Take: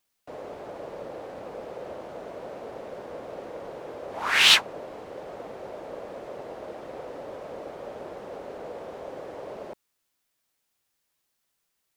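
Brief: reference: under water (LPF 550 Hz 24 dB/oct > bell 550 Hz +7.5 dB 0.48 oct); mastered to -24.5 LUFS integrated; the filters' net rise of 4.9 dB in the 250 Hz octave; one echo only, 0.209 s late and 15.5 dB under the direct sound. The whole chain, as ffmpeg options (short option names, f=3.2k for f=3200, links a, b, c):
-af "lowpass=f=550:w=0.5412,lowpass=f=550:w=1.3066,equalizer=f=250:t=o:g=6,equalizer=f=550:t=o:w=0.48:g=7.5,aecho=1:1:209:0.168,volume=12dB"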